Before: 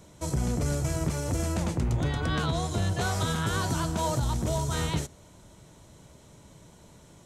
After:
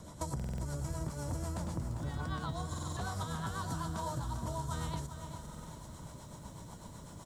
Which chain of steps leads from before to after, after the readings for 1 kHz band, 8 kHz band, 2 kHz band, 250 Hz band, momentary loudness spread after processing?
-7.0 dB, -10.5 dB, -11.5 dB, -10.0 dB, 11 LU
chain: rotary cabinet horn 8 Hz; fifteen-band graphic EQ 400 Hz -6 dB, 1 kHz +7 dB, 2.5 kHz -9 dB; compression 8:1, threshold -41 dBFS, peak gain reduction 17.5 dB; band-stop 6.2 kHz, Q 14; delay 646 ms -15.5 dB; buffer glitch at 0.35/2.69/5.41 s, samples 2048, times 5; bit-crushed delay 399 ms, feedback 55%, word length 11-bit, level -10 dB; trim +5.5 dB

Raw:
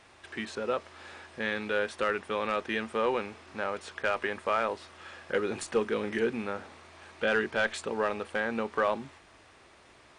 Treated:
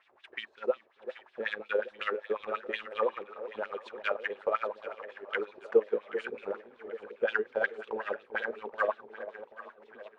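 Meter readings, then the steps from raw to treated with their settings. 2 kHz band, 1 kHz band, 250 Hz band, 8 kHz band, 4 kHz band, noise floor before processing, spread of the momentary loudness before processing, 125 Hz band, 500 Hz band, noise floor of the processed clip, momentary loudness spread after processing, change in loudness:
-3.0 dB, -4.0 dB, -10.0 dB, under -20 dB, -6.0 dB, -57 dBFS, 13 LU, under -15 dB, -1.0 dB, -65 dBFS, 13 LU, -3.0 dB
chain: chunks repeated in reverse 593 ms, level -12 dB; wah-wah 5.5 Hz 410–3600 Hz, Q 3.1; transient shaper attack +5 dB, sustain -10 dB; on a send: echo whose repeats swap between lows and highs 391 ms, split 810 Hz, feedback 70%, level -11 dB; on the sum: tape noise reduction on one side only decoder only; trim +2 dB

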